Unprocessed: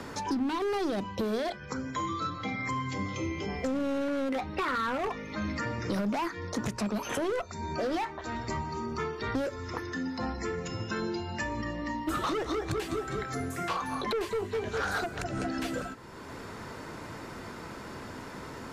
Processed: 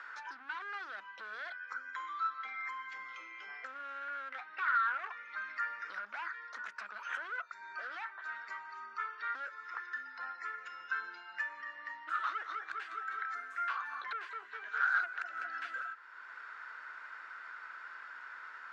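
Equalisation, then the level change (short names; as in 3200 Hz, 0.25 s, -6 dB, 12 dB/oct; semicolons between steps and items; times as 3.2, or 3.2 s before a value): ladder band-pass 1600 Hz, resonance 70%; +4.5 dB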